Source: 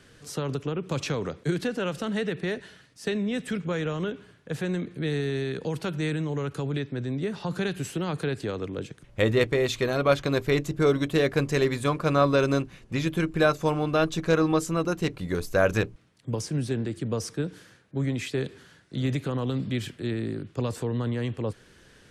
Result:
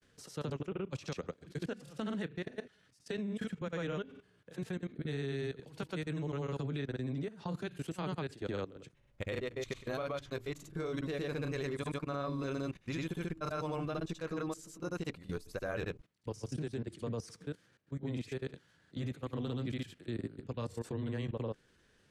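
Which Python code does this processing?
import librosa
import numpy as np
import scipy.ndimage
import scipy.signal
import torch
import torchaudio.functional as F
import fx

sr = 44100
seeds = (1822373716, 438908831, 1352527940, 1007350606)

y = fx.granulator(x, sr, seeds[0], grain_ms=100.0, per_s=20.0, spray_ms=100.0, spread_st=0)
y = fx.level_steps(y, sr, step_db=16)
y = y * librosa.db_to_amplitude(-4.5)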